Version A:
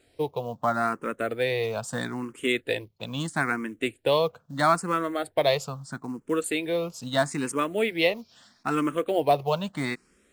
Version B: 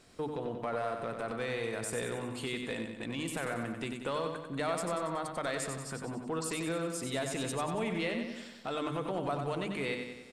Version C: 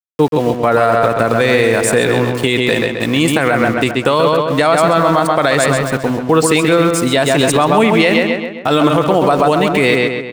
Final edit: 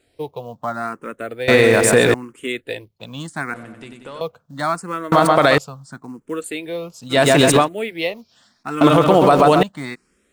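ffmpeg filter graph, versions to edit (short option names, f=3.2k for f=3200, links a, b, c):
-filter_complex "[2:a]asplit=4[a][b][c][d];[0:a]asplit=6[e][f][g][h][i][j];[e]atrim=end=1.482[k];[a]atrim=start=1.478:end=2.142[l];[f]atrim=start=2.138:end=3.542[m];[1:a]atrim=start=3.538:end=4.212[n];[g]atrim=start=4.208:end=5.122[o];[b]atrim=start=5.118:end=5.582[p];[h]atrim=start=5.578:end=7.19[q];[c]atrim=start=7.09:end=7.69[r];[i]atrim=start=7.59:end=8.812[s];[d]atrim=start=8.808:end=9.632[t];[j]atrim=start=9.628[u];[k][l]acrossfade=d=0.004:c1=hsin:c2=hsin[v];[v][m]acrossfade=d=0.004:c1=hsin:c2=hsin[w];[w][n]acrossfade=d=0.004:c1=hsin:c2=hsin[x];[x][o]acrossfade=d=0.004:c1=hsin:c2=hsin[y];[y][p]acrossfade=d=0.004:c1=hsin:c2=hsin[z];[z][q]acrossfade=d=0.004:c1=hsin:c2=hsin[aa];[aa][r]acrossfade=d=0.1:c1=tri:c2=tri[ab];[ab][s]acrossfade=d=0.1:c1=tri:c2=tri[ac];[ac][t]acrossfade=d=0.004:c1=hsin:c2=hsin[ad];[ad][u]acrossfade=d=0.004:c1=hsin:c2=hsin"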